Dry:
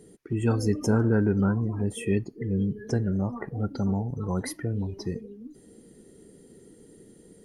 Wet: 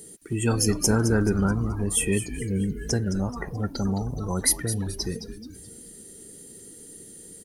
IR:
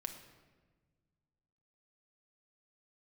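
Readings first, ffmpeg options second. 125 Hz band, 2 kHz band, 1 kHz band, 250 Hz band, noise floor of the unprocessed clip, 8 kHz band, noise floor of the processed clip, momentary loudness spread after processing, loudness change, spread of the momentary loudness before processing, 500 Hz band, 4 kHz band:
+0.5 dB, +5.5 dB, +3.0 dB, +0.5 dB, −54 dBFS, +17.0 dB, −46 dBFS, 21 LU, +2.0 dB, 11 LU, +0.5 dB, +12.5 dB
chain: -filter_complex "[0:a]crystalizer=i=5.5:c=0,asplit=2[link_01][link_02];[link_02]asplit=4[link_03][link_04][link_05][link_06];[link_03]adelay=215,afreqshift=-140,volume=-11dB[link_07];[link_04]adelay=430,afreqshift=-280,volume=-19.2dB[link_08];[link_05]adelay=645,afreqshift=-420,volume=-27.4dB[link_09];[link_06]adelay=860,afreqshift=-560,volume=-35.5dB[link_10];[link_07][link_08][link_09][link_10]amix=inputs=4:normalize=0[link_11];[link_01][link_11]amix=inputs=2:normalize=0"

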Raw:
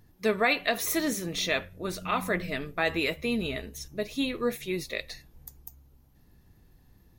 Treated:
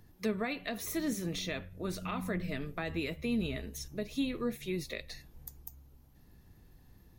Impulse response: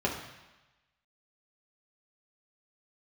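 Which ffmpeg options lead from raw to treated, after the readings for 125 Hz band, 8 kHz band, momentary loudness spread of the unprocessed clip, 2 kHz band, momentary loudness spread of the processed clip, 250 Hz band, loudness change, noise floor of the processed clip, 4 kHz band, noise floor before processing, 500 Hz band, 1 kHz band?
−0.5 dB, −8.0 dB, 19 LU, −11.0 dB, 13 LU, −2.5 dB, −7.0 dB, −60 dBFS, −9.0 dB, −61 dBFS, −8.0 dB, −11.0 dB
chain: -filter_complex "[0:a]acrossover=split=280[link_01][link_02];[link_02]acompressor=threshold=-40dB:ratio=3[link_03];[link_01][link_03]amix=inputs=2:normalize=0"

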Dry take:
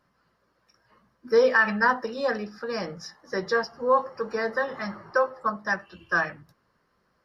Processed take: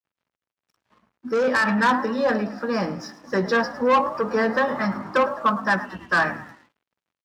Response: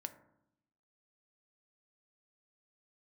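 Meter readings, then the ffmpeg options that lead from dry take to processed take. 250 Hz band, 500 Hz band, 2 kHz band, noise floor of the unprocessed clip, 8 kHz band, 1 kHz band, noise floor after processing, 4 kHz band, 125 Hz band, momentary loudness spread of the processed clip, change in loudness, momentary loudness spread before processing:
+9.5 dB, +2.0 dB, +2.0 dB, −71 dBFS, can't be measured, +5.0 dB, below −85 dBFS, +4.5 dB, +8.5 dB, 7 LU, +3.5 dB, 12 LU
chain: -filter_complex "[0:a]acontrast=70,highshelf=frequency=4700:gain=-9,asplit=2[link_01][link_02];[link_02]adelay=16,volume=-13dB[link_03];[link_01][link_03]amix=inputs=2:normalize=0,asplit=5[link_04][link_05][link_06][link_07][link_08];[link_05]adelay=107,afreqshift=56,volume=-17dB[link_09];[link_06]adelay=214,afreqshift=112,volume=-23.6dB[link_10];[link_07]adelay=321,afreqshift=168,volume=-30.1dB[link_11];[link_08]adelay=428,afreqshift=224,volume=-36.7dB[link_12];[link_04][link_09][link_10][link_11][link_12]amix=inputs=5:normalize=0,asoftclip=type=tanh:threshold=-15dB,asplit=2[link_13][link_14];[link_14]equalizer=frequency=125:width_type=o:width=1:gain=-4,equalizer=frequency=250:width_type=o:width=1:gain=11,equalizer=frequency=500:width_type=o:width=1:gain=-10,equalizer=frequency=1000:width_type=o:width=1:gain=6,equalizer=frequency=2000:width_type=o:width=1:gain=-5,equalizer=frequency=4000:width_type=o:width=1:gain=-8[link_15];[1:a]atrim=start_sample=2205[link_16];[link_15][link_16]afir=irnorm=-1:irlink=0,volume=-1dB[link_17];[link_13][link_17]amix=inputs=2:normalize=0,aeval=exprs='sgn(val(0))*max(abs(val(0))-0.00237,0)':channel_layout=same,dynaudnorm=framelen=240:gausssize=11:maxgain=8dB,highpass=60,volume=-7.5dB"

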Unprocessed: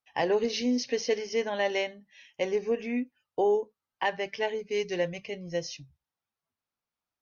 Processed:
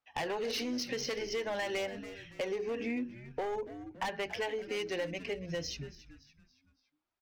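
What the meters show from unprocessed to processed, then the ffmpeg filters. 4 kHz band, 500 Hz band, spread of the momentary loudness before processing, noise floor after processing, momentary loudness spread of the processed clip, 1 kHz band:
−3.0 dB, −7.5 dB, 10 LU, −80 dBFS, 7 LU, −6.0 dB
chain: -filter_complex "[0:a]adynamicsmooth=sensitivity=6:basefreq=5400,bandreject=frequency=60:width_type=h:width=6,bandreject=frequency=120:width_type=h:width=6,bandreject=frequency=180:width_type=h:width=6,bandreject=frequency=240:width_type=h:width=6,bandreject=frequency=300:width_type=h:width=6,bandreject=frequency=360:width_type=h:width=6,bandreject=frequency=420:width_type=h:width=6,bandreject=frequency=480:width_type=h:width=6,acrossover=split=730[link_01][link_02];[link_01]alimiter=level_in=5.5dB:limit=-24dB:level=0:latency=1:release=87,volume=-5.5dB[link_03];[link_03][link_02]amix=inputs=2:normalize=0,asoftclip=type=hard:threshold=-29.5dB,asplit=2[link_04][link_05];[link_05]asplit=4[link_06][link_07][link_08][link_09];[link_06]adelay=282,afreqshift=-110,volume=-16.5dB[link_10];[link_07]adelay=564,afreqshift=-220,volume=-23.4dB[link_11];[link_08]adelay=846,afreqshift=-330,volume=-30.4dB[link_12];[link_09]adelay=1128,afreqshift=-440,volume=-37.3dB[link_13];[link_10][link_11][link_12][link_13]amix=inputs=4:normalize=0[link_14];[link_04][link_14]amix=inputs=2:normalize=0,aphaser=in_gain=1:out_gain=1:delay=3.8:decay=0.27:speed=0.51:type=sinusoidal,acompressor=threshold=-34dB:ratio=6,volume=2dB"

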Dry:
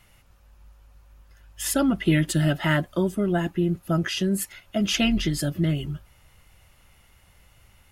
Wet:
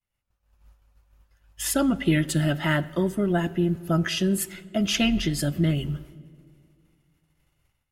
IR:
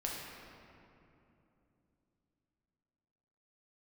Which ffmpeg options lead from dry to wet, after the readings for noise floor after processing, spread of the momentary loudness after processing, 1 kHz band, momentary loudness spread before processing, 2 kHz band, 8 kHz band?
−78 dBFS, 6 LU, −0.5 dB, 7 LU, −0.5 dB, 0.0 dB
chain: -filter_complex "[0:a]agate=range=-33dB:threshold=-43dB:ratio=3:detection=peak,dynaudnorm=framelen=100:gausssize=7:maxgain=10.5dB,asplit=2[link_01][link_02];[1:a]atrim=start_sample=2205,asetrate=70560,aresample=44100[link_03];[link_02][link_03]afir=irnorm=-1:irlink=0,volume=-13.5dB[link_04];[link_01][link_04]amix=inputs=2:normalize=0,volume=-9dB"

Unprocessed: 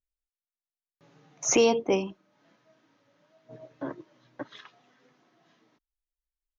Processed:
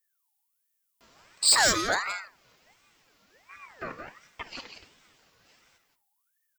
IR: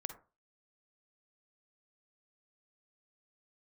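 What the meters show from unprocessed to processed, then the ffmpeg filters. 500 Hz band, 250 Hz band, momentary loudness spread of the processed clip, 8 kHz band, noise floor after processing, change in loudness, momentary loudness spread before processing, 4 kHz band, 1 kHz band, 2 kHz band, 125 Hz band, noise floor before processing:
−9.5 dB, −9.0 dB, 22 LU, can't be measured, −77 dBFS, +3.5 dB, 21 LU, +10.5 dB, +5.0 dB, +10.0 dB, −3.0 dB, below −85 dBFS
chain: -filter_complex "[0:a]equalizer=frequency=240:width_type=o:width=2.7:gain=-6,aexciter=amount=2.2:drive=5.1:freq=3500,asoftclip=type=tanh:threshold=-19dB,aecho=1:1:173:0.473,asplit=2[link_01][link_02];[1:a]atrim=start_sample=2205,asetrate=48510,aresample=44100,highshelf=frequency=5400:gain=11.5[link_03];[link_02][link_03]afir=irnorm=-1:irlink=0,volume=1.5dB[link_04];[link_01][link_04]amix=inputs=2:normalize=0,aeval=exprs='val(0)*sin(2*PI*1300*n/s+1300*0.4/1.4*sin(2*PI*1.4*n/s))':channel_layout=same"

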